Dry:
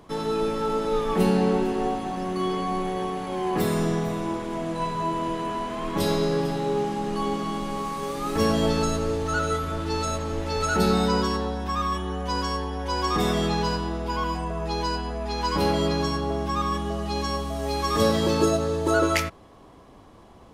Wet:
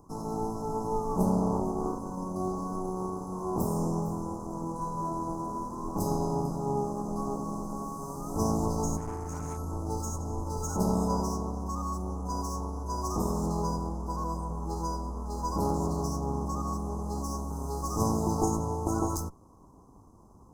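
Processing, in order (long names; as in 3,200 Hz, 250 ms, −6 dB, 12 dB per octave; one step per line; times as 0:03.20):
lower of the sound and its delayed copy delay 0.79 ms
elliptic band-stop filter 1,000–6,000 Hz, stop band 50 dB
0:08.97–0:09.58: tube saturation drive 27 dB, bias 0.4
level −3 dB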